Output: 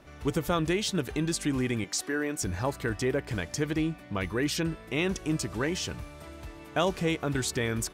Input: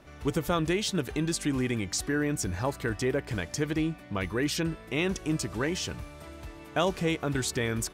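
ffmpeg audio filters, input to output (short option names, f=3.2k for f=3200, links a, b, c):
-filter_complex "[0:a]asettb=1/sr,asplit=3[a][b][c];[a]atrim=end=1.844[d];[b]atrim=start=1.84:end=2.42,asetpts=PTS-STARTPTS,afade=t=in:d=0.004:c=qsin,afade=t=out:st=0.576:d=0.004:c=qsin,highpass=300[e];[c]atrim=start=2.416[f];[d][e]acrossfade=d=0.004:c1=hsin:c2=qsin[g];[g][f]acrossfade=d=0.004:c1=qsin:c2=hsin"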